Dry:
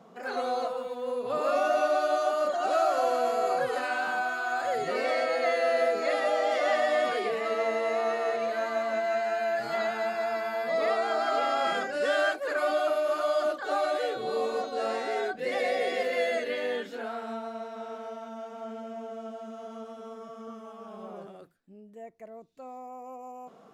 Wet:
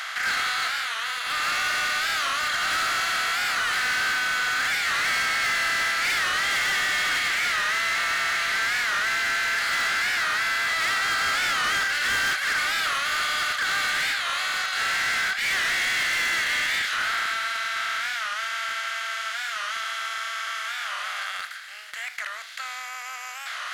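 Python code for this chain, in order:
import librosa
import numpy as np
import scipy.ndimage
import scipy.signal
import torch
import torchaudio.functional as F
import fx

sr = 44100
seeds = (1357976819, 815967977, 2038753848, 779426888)

y = fx.bin_compress(x, sr, power=0.4)
y = scipy.signal.sosfilt(scipy.signal.butter(4, 1500.0, 'highpass', fs=sr, output='sos'), y)
y = np.clip(y, -10.0 ** (-30.5 / 20.0), 10.0 ** (-30.5 / 20.0))
y = fx.record_warp(y, sr, rpm=45.0, depth_cents=160.0)
y = y * librosa.db_to_amplitude(9.0)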